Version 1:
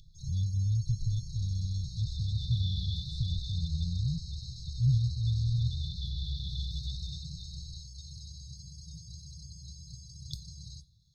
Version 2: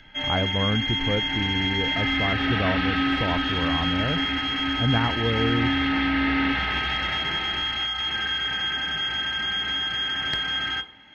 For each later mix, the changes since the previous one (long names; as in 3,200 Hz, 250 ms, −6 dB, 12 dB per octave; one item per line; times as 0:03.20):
master: remove linear-phase brick-wall band-stop 170–3,400 Hz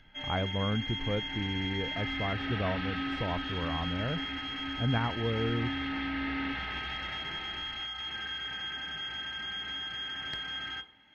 speech −6.0 dB
background −11.0 dB